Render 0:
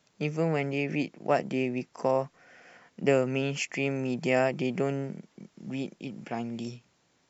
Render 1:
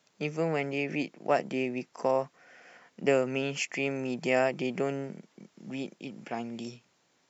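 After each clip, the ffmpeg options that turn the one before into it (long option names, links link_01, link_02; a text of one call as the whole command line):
ffmpeg -i in.wav -af "highpass=frequency=240:poles=1" out.wav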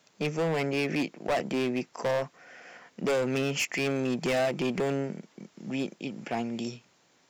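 ffmpeg -i in.wav -af "asoftclip=type=hard:threshold=-28.5dB,volume=5dB" out.wav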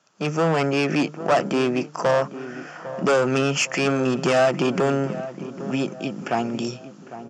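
ffmpeg -i in.wav -filter_complex "[0:a]highpass=110,equalizer=frequency=240:width_type=q:width=4:gain=-4,equalizer=frequency=460:width_type=q:width=4:gain=-4,equalizer=frequency=1300:width_type=q:width=4:gain=7,equalizer=frequency=2100:width_type=q:width=4:gain=-8,equalizer=frequency=3900:width_type=q:width=4:gain=-8,lowpass=frequency=7700:width=0.5412,lowpass=frequency=7700:width=1.3066,dynaudnorm=framelen=150:gausssize=3:maxgain=9.5dB,asplit=2[link_01][link_02];[link_02]adelay=803,lowpass=frequency=1300:poles=1,volume=-13dB,asplit=2[link_03][link_04];[link_04]adelay=803,lowpass=frequency=1300:poles=1,volume=0.49,asplit=2[link_05][link_06];[link_06]adelay=803,lowpass=frequency=1300:poles=1,volume=0.49,asplit=2[link_07][link_08];[link_08]adelay=803,lowpass=frequency=1300:poles=1,volume=0.49,asplit=2[link_09][link_10];[link_10]adelay=803,lowpass=frequency=1300:poles=1,volume=0.49[link_11];[link_01][link_03][link_05][link_07][link_09][link_11]amix=inputs=6:normalize=0" out.wav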